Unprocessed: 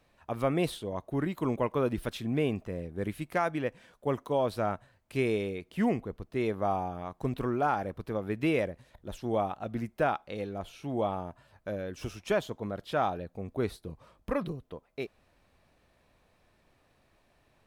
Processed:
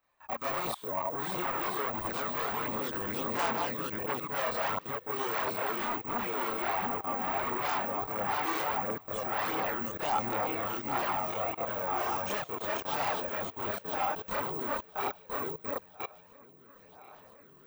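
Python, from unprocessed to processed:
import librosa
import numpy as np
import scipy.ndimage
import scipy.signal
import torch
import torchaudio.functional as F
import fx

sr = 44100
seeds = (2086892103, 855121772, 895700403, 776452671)

p1 = fx.reverse_delay_fb(x, sr, ms=501, feedback_pct=70, wet_db=-2.5)
p2 = fx.fold_sine(p1, sr, drive_db=16, ceiling_db=-12.5)
p3 = p1 + F.gain(torch.from_numpy(p2), -8.5).numpy()
p4 = (np.kron(scipy.signal.resample_poly(p3, 1, 2), np.eye(2)[0]) * 2)[:len(p3)]
p5 = fx.level_steps(p4, sr, step_db=22)
p6 = fx.graphic_eq(p5, sr, hz=(1000, 2000, 8000), db=(11, 4, 6))
p7 = fx.chorus_voices(p6, sr, voices=2, hz=0.73, base_ms=29, depth_ms=1.9, mix_pct=60)
p8 = fx.low_shelf(p7, sr, hz=170.0, db=-10.5)
p9 = p8 + fx.echo_wet_highpass(p8, sr, ms=150, feedback_pct=43, hz=2300.0, wet_db=-21.5, dry=0)
y = F.gain(torch.from_numpy(p9), -9.0).numpy()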